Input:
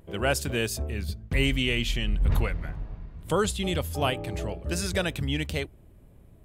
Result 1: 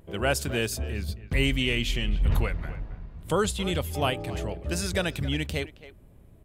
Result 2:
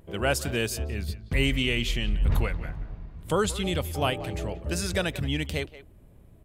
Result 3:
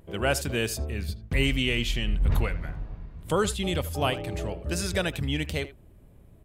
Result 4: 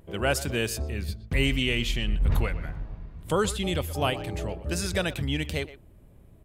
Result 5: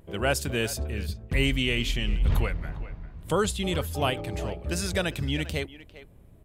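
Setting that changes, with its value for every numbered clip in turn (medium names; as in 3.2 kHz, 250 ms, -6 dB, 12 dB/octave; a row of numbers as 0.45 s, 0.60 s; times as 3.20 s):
speakerphone echo, time: 270 ms, 180 ms, 80 ms, 120 ms, 400 ms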